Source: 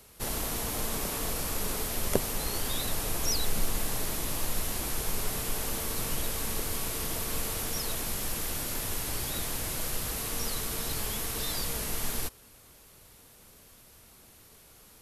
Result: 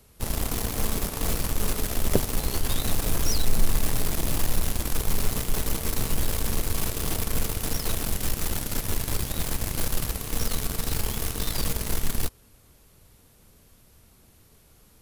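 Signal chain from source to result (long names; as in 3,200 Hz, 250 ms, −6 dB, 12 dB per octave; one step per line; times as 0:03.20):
low-shelf EQ 290 Hz +9.5 dB
in parallel at −3.5 dB: bit reduction 4 bits
on the sum: level −4.5 dB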